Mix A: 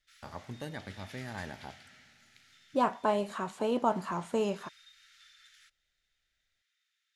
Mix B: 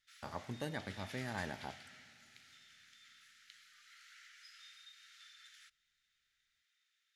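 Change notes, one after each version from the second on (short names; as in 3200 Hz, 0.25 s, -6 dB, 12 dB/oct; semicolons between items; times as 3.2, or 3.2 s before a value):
second voice: muted; master: add low shelf 74 Hz -7 dB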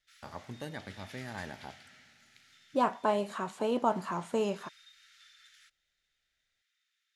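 second voice: unmuted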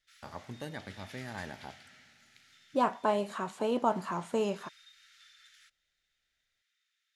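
none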